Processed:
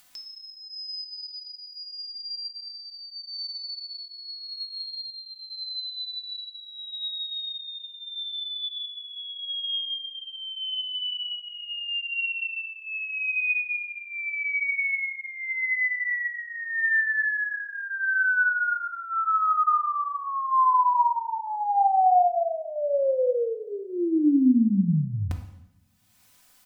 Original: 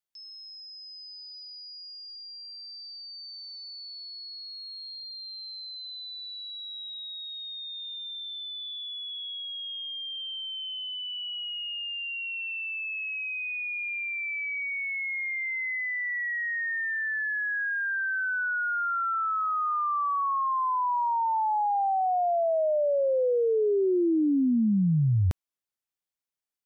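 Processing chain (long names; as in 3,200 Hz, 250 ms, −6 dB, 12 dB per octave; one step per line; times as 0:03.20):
parametric band 430 Hz −13.5 dB 0.25 octaves
comb filter 4 ms, depth 72%
upward compression, threshold −36 dBFS
coupled-rooms reverb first 0.82 s, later 2.3 s, from −26 dB, DRR 4 dB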